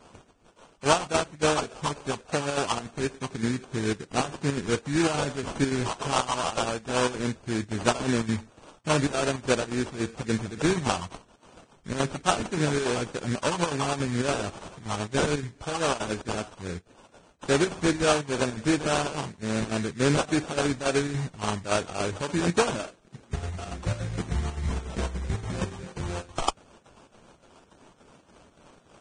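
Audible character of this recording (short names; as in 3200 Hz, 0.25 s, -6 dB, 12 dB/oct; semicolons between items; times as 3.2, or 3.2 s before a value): phasing stages 4, 3.6 Hz, lowest notch 550–4500 Hz; aliases and images of a low sample rate 2000 Hz, jitter 20%; chopped level 3.5 Hz, depth 60%, duty 75%; Vorbis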